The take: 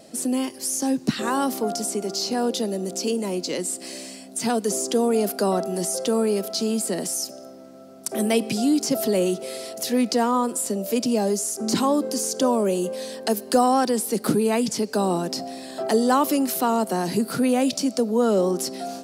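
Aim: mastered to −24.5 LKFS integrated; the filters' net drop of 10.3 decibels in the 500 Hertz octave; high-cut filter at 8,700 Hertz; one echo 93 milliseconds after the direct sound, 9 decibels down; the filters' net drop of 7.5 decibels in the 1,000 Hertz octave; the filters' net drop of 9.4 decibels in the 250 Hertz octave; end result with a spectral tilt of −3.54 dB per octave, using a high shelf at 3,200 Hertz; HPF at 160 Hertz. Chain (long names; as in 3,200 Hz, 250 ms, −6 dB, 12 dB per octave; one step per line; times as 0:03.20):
high-pass filter 160 Hz
low-pass filter 8,700 Hz
parametric band 250 Hz −7.5 dB
parametric band 500 Hz −9 dB
parametric band 1,000 Hz −5 dB
high-shelf EQ 3,200 Hz −7.5 dB
single-tap delay 93 ms −9 dB
level +7.5 dB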